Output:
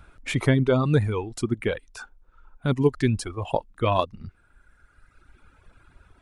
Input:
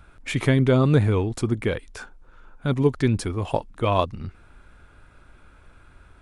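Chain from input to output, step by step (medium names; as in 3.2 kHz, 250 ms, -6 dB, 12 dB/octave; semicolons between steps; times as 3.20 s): reverb removal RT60 1.9 s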